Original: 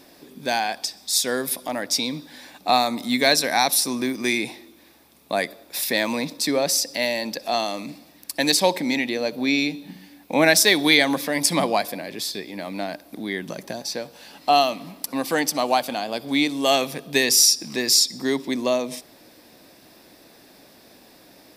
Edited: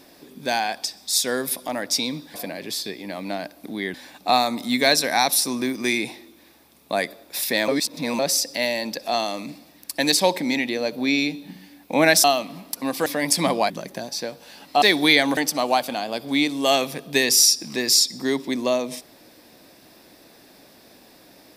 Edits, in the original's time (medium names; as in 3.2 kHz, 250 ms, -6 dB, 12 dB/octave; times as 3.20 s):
6.08–6.59 s: reverse
10.64–11.19 s: swap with 14.55–15.37 s
11.83–13.43 s: move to 2.34 s